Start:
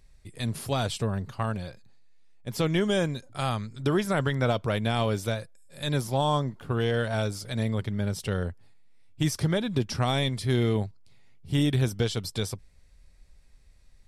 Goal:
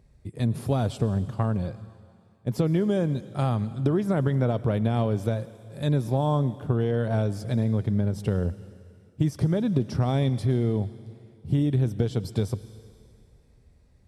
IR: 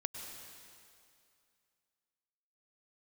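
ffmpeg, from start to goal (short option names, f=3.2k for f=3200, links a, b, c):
-filter_complex "[0:a]highpass=75,tiltshelf=f=1.1k:g=9.5,acompressor=threshold=-20dB:ratio=6,asplit=2[a][b];[1:a]atrim=start_sample=2205,highshelf=f=2.9k:g=10.5[c];[b][c]afir=irnorm=-1:irlink=0,volume=-12dB[d];[a][d]amix=inputs=2:normalize=0,volume=-1.5dB"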